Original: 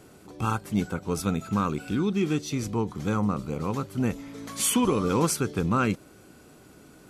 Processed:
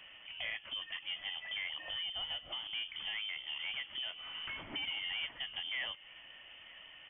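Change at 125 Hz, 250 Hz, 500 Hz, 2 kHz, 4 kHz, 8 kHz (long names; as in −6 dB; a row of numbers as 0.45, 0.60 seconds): −36.0 dB, −35.5 dB, −28.0 dB, −2.0 dB, +4.0 dB, below −40 dB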